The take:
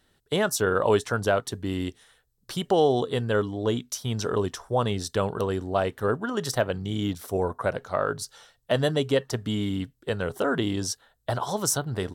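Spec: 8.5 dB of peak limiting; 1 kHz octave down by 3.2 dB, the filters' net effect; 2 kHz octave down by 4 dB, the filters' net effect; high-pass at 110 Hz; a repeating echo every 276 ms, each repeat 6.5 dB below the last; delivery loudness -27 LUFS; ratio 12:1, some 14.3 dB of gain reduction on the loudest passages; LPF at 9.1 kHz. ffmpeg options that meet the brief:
-af "highpass=110,lowpass=9100,equalizer=f=1000:t=o:g=-3.5,equalizer=f=2000:t=o:g=-4,acompressor=threshold=0.0251:ratio=12,alimiter=level_in=1.33:limit=0.0631:level=0:latency=1,volume=0.75,aecho=1:1:276|552|828|1104|1380|1656:0.473|0.222|0.105|0.0491|0.0231|0.0109,volume=3.55"

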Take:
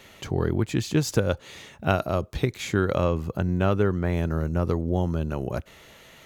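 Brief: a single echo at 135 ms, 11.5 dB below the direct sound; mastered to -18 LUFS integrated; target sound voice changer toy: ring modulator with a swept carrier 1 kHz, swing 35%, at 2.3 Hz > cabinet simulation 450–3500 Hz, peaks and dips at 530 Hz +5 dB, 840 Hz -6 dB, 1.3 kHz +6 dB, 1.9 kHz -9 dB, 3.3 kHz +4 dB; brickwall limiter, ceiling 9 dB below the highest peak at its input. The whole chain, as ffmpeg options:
-af "alimiter=limit=0.158:level=0:latency=1,aecho=1:1:135:0.266,aeval=exprs='val(0)*sin(2*PI*1000*n/s+1000*0.35/2.3*sin(2*PI*2.3*n/s))':c=same,highpass=450,equalizer=f=530:t=q:w=4:g=5,equalizer=f=840:t=q:w=4:g=-6,equalizer=f=1300:t=q:w=4:g=6,equalizer=f=1900:t=q:w=4:g=-9,equalizer=f=3300:t=q:w=4:g=4,lowpass=f=3500:w=0.5412,lowpass=f=3500:w=1.3066,volume=3.76"

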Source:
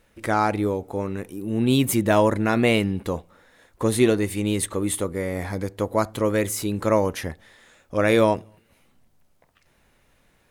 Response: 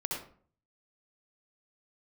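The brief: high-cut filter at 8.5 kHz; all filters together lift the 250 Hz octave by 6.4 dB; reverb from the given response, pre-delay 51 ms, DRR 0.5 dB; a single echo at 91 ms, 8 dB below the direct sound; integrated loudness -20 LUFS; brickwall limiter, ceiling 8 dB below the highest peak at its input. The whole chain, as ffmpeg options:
-filter_complex "[0:a]lowpass=8500,equalizer=f=250:t=o:g=8,alimiter=limit=0.299:level=0:latency=1,aecho=1:1:91:0.398,asplit=2[s0][s1];[1:a]atrim=start_sample=2205,adelay=51[s2];[s1][s2]afir=irnorm=-1:irlink=0,volume=0.596[s3];[s0][s3]amix=inputs=2:normalize=0,volume=0.891"

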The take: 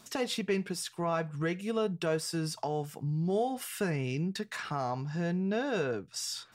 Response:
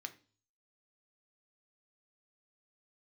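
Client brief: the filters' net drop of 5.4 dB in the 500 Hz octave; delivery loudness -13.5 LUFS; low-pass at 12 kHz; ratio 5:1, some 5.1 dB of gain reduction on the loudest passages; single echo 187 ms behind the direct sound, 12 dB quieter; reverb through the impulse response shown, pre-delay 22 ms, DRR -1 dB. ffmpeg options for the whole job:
-filter_complex "[0:a]lowpass=12000,equalizer=f=500:t=o:g=-7,acompressor=threshold=0.0178:ratio=5,aecho=1:1:187:0.251,asplit=2[s0][s1];[1:a]atrim=start_sample=2205,adelay=22[s2];[s1][s2]afir=irnorm=-1:irlink=0,volume=1.5[s3];[s0][s3]amix=inputs=2:normalize=0,volume=13.3"

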